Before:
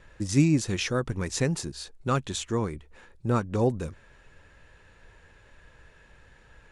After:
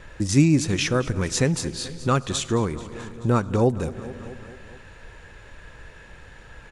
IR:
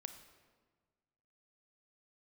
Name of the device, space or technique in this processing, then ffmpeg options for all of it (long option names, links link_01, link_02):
compressed reverb return: -filter_complex "[0:a]aecho=1:1:217|434|651|868|1085:0.126|0.0755|0.0453|0.0272|0.0163,asplit=2[link_01][link_02];[1:a]atrim=start_sample=2205[link_03];[link_02][link_03]afir=irnorm=-1:irlink=0,acompressor=threshold=-41dB:ratio=10,volume=6dB[link_04];[link_01][link_04]amix=inputs=2:normalize=0,volume=3dB"